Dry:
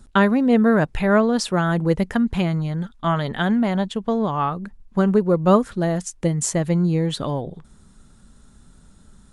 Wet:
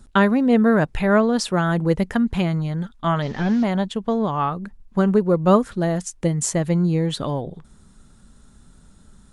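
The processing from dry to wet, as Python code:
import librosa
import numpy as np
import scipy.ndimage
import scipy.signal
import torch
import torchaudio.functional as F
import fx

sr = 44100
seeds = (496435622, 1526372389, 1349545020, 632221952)

y = fx.delta_mod(x, sr, bps=32000, step_db=-38.5, at=(3.22, 3.64))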